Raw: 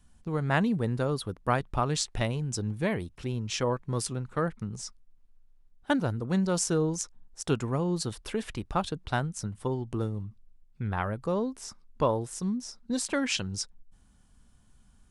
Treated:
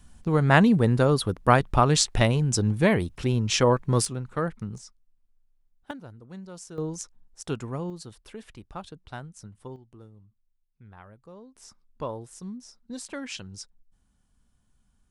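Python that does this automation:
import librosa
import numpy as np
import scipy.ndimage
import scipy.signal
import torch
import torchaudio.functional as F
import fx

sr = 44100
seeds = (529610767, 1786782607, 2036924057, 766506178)

y = fx.gain(x, sr, db=fx.steps((0.0, 8.0), (4.05, 1.0), (4.78, -7.5), (5.91, -15.0), (6.78, -3.5), (7.9, -10.0), (9.76, -18.0), (11.56, -7.5)))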